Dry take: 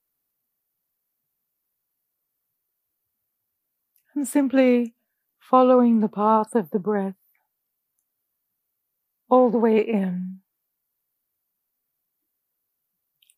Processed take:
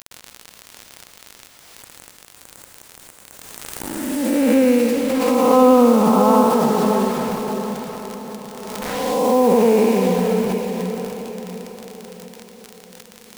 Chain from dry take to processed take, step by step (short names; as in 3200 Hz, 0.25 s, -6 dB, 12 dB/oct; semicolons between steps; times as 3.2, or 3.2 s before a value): time blur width 0.484 s; HPF 240 Hz 6 dB/oct; crackle 44/s -41 dBFS; spectral gain 1.44–4.25, 2100–5700 Hz -19 dB; in parallel at -1.5 dB: upward compressor, threshold -30 dBFS; on the sum: bit-crush 6-bit; diffused feedback echo 0.63 s, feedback 43%, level -6 dB; on a send at -12 dB: reverb RT60 0.30 s, pre-delay 0.112 s; on the sum: backwards sustainer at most 25 dB/s; gain +4 dB